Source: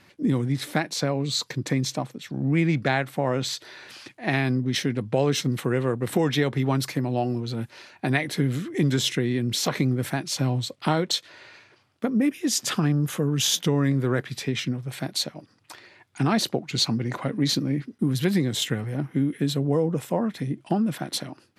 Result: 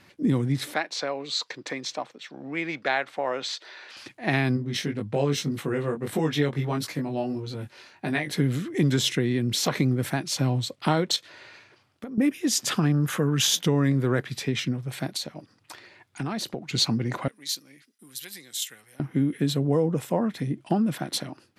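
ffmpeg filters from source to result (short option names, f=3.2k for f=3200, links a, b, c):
-filter_complex "[0:a]asettb=1/sr,asplit=3[a][b][c];[a]atrim=end=0.744[d];[b]atrim=start=0.74:end=3.97,asetpts=PTS-STARTPTS,afade=t=in:d=0.004:c=qsin,afade=t=out:st=3.226:d=0.004:c=qsin,highpass=500,lowpass=5.4k[e];[c]atrim=start=3.966[f];[d][e]acrossfade=d=0.004:c1=hsin:c2=qsin[g];[g][f]acrossfade=d=0.004:c1=qsin:c2=hsin,asplit=3[h][i][j];[h]afade=t=out:st=4.56:d=0.02[k];[i]flanger=delay=19:depth=2.4:speed=1.6,afade=t=in:st=4.56:d=0.02,afade=t=out:st=8.31:d=0.02[l];[j]afade=t=in:st=8.31:d=0.02[m];[k][l][m]amix=inputs=3:normalize=0,asettb=1/sr,asplit=3[n][o][p];[n]atrim=end=11.164[q];[o]atrim=start=11.16:end=12.18,asetpts=PTS-STARTPTS,afade=t=in:d=0.004:c=qsin,afade=t=out:st=1.016:d=0.004:c=qsin,acompressor=threshold=-33dB:ratio=6:attack=3.2:release=140:knee=1:detection=peak[r];[p]atrim=start=12.176[s];[q][r]acrossfade=d=0.004:c1=hsin:c2=qsin[t];[t][s]acrossfade=d=0.004:c1=qsin:c2=hsin,asettb=1/sr,asplit=3[u][v][w];[u]atrim=end=12.944[x];[v]atrim=start=12.94:end=13.46,asetpts=PTS-STARTPTS,afade=t=in:d=0.004:c=qsin,afade=t=out:st=0.516:d=0.004:c=qsin,equalizer=f=1.5k:t=o:w=1.2:g=8[y];[w]atrim=start=13.456[z];[x][y]acrossfade=d=0.004:c1=hsin:c2=qsin[aa];[aa][z]acrossfade=d=0.004:c1=qsin:c2=hsin,asettb=1/sr,asplit=3[ab][ac][ad];[ab]atrim=end=15.174[ae];[ac]atrim=start=15.17:end=16.62,asetpts=PTS-STARTPTS,afade=t=in:d=0.004:c=qsin,afade=t=out:st=1.446:d=0.004:c=qsin,acompressor=threshold=-30dB:ratio=2.5:attack=3.2:release=140:knee=1:detection=peak[af];[ad]atrim=start=16.616[ag];[ae][af]acrossfade=d=0.004:c1=hsin:c2=qsin[ah];[ah][ag]acrossfade=d=0.004:c1=qsin:c2=hsin,asettb=1/sr,asplit=3[ai][aj][ak];[ai]atrim=end=17.284[al];[aj]atrim=start=17.28:end=19,asetpts=PTS-STARTPTS,afade=t=in:d=0.004:c=qsin,afade=t=out:st=1.716:d=0.004:c=qsin,aderivative[am];[ak]atrim=start=18.996[an];[al][am]acrossfade=d=0.004:c1=hsin:c2=qsin[ao];[ao][an]acrossfade=d=0.004:c1=qsin:c2=hsin"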